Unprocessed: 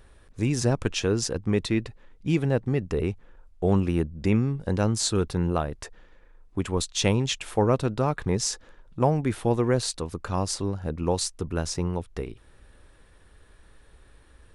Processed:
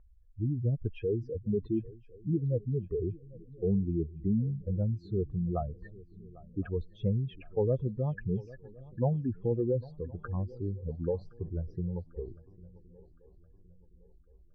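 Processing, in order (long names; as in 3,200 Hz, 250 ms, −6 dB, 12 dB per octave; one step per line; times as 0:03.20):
expanding power law on the bin magnitudes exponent 3.2
low-pass filter 1,800 Hz 24 dB per octave
on a send: feedback echo with a long and a short gap by turns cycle 1,065 ms, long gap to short 3 to 1, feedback 38%, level −21 dB
on the sum: level −5.5 dB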